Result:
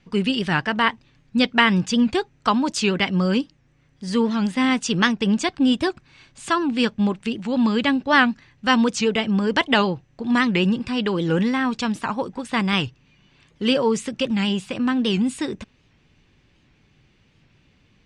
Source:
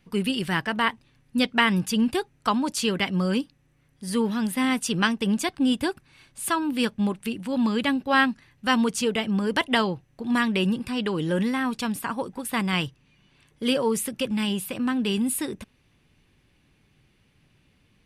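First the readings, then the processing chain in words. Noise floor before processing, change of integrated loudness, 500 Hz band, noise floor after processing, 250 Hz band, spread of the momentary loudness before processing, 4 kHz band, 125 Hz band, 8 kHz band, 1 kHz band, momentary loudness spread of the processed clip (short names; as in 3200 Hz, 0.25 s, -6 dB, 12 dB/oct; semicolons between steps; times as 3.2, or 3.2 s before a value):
-64 dBFS, +4.0 dB, +4.0 dB, -60 dBFS, +4.0 dB, 8 LU, +4.0 dB, +4.0 dB, -1.5 dB, +4.0 dB, 8 LU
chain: steep low-pass 7500 Hz 36 dB/oct; record warp 78 rpm, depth 160 cents; gain +4 dB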